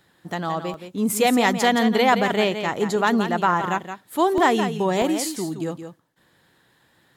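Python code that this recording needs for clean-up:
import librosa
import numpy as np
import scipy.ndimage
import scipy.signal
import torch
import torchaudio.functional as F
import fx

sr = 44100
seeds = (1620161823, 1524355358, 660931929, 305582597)

y = fx.fix_interpolate(x, sr, at_s=(0.74, 4.38, 5.02), length_ms=1.2)
y = fx.fix_echo_inverse(y, sr, delay_ms=171, level_db=-9.0)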